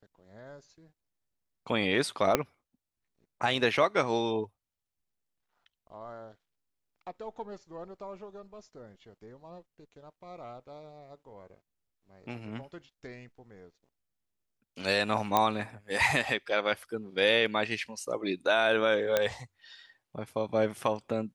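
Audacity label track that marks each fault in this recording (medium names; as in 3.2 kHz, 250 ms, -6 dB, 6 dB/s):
2.350000	2.350000	pop -8 dBFS
15.370000	15.370000	pop -10 dBFS
19.170000	19.170000	pop -11 dBFS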